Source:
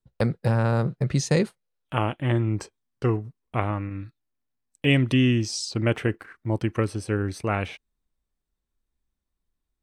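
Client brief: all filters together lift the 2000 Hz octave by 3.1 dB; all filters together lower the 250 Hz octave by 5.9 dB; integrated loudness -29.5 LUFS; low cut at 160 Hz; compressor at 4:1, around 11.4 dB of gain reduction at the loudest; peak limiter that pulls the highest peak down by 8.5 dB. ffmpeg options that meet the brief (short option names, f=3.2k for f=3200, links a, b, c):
-af "highpass=160,equalizer=f=250:t=o:g=-6.5,equalizer=f=2k:t=o:g=4,acompressor=threshold=-32dB:ratio=4,volume=8.5dB,alimiter=limit=-15dB:level=0:latency=1"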